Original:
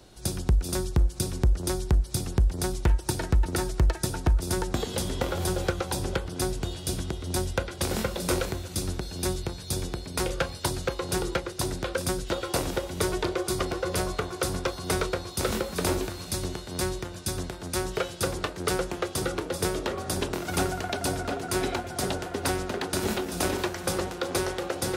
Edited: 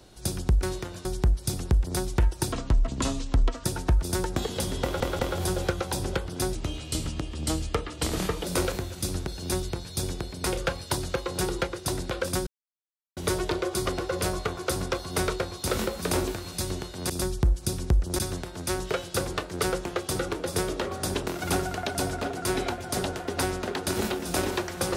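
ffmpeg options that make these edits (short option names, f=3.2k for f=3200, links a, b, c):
-filter_complex "[0:a]asplit=13[a][b][c][d][e][f][g][h][i][j][k][l][m];[a]atrim=end=0.632[n];[b]atrim=start=16.828:end=17.252[o];[c]atrim=start=1.718:end=3.194[p];[d]atrim=start=3.19:end=4.02,asetpts=PTS-STARTPTS,asetrate=32634,aresample=44100[q];[e]atrim=start=4.016:end=5.382[r];[f]atrim=start=5.188:end=5.382[s];[g]atrim=start=5.188:end=6.554[t];[h]atrim=start=6.55:end=8.18,asetpts=PTS-STARTPTS,asetrate=37926,aresample=44100[u];[i]atrim=start=8.176:end=12.2,asetpts=PTS-STARTPTS,afade=t=out:st=4.02:d=0.004:c=hsin[v];[j]atrim=start=12.2:end=12.9,asetpts=PTS-STARTPTS,volume=0[w];[k]atrim=start=12.9:end=16.832,asetpts=PTS-STARTPTS,afade=t=in:d=0.004:c=hsin[x];[l]atrim=start=0.628:end=1.722[y];[m]atrim=start=17.248[z];[n][o]acrossfade=d=0.004:c1=hsin:c2=hsin[aa];[aa][p]acrossfade=d=0.004:c1=hsin:c2=hsin[ab];[ab][q]acrossfade=d=0.004:c1=hsin:c2=hsin[ac];[ac][r]acrossfade=d=0.004:c1=hsin:c2=hsin[ad];[ad][s]acrossfade=d=0.004:c1=hsin:c2=hsin[ae];[ae][t]acrossfade=d=0.004:c1=hsin:c2=hsin[af];[af][u]acrossfade=d=0.004:c1=hsin:c2=hsin[ag];[v][w][x]concat=n=3:v=0:a=1[ah];[ag][ah]acrossfade=d=0.004:c1=hsin:c2=hsin[ai];[ai][y]acrossfade=d=0.004:c1=hsin:c2=hsin[aj];[aj][z]acrossfade=d=0.004:c1=hsin:c2=hsin"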